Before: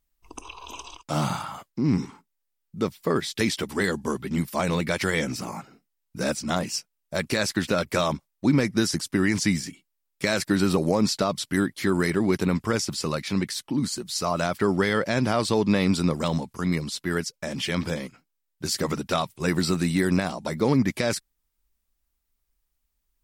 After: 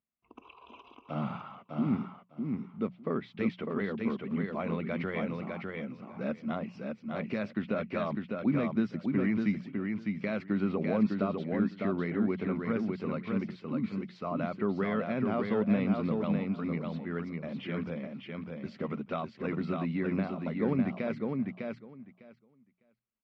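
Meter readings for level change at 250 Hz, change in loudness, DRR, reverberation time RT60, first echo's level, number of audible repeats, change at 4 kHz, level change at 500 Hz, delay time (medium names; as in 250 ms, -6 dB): -5.0 dB, -7.5 dB, no reverb, no reverb, -4.0 dB, 2, -21.5 dB, -7.5 dB, 603 ms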